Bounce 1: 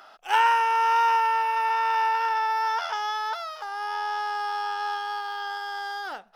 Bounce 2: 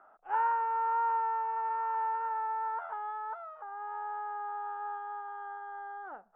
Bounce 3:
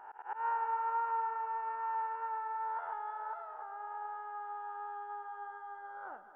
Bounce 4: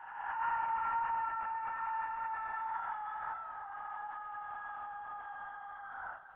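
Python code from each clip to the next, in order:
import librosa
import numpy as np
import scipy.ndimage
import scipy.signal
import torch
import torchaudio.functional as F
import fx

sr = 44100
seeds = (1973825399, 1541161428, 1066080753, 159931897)

y1 = scipy.signal.sosfilt(scipy.signal.butter(4, 1400.0, 'lowpass', fs=sr, output='sos'), x)
y1 = y1 * librosa.db_to_amplitude(-8.0)
y2 = fx.spec_swells(y1, sr, rise_s=0.87)
y2 = fx.echo_heads(y2, sr, ms=107, heads='all three', feedback_pct=60, wet_db=-16.5)
y2 = fx.auto_swell(y2, sr, attack_ms=142.0)
y2 = y2 * librosa.db_to_amplitude(-4.5)
y3 = fx.spec_swells(y2, sr, rise_s=1.21)
y3 = scipy.signal.sosfilt(scipy.signal.bessel(2, 1600.0, 'highpass', norm='mag', fs=sr, output='sos'), y3)
y3 = fx.lpc_vocoder(y3, sr, seeds[0], excitation='whisper', order=16)
y3 = y3 * librosa.db_to_amplitude(6.0)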